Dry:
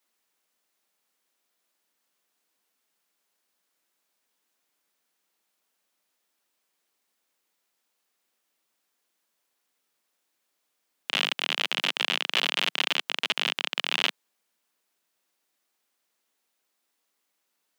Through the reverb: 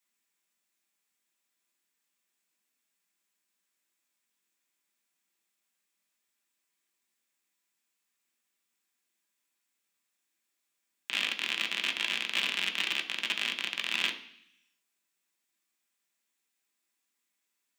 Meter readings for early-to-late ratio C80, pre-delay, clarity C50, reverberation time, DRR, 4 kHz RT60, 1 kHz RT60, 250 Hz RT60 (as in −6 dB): 15.5 dB, 3 ms, 12.5 dB, 0.65 s, 3.5 dB, 1.1 s, 0.70 s, 0.95 s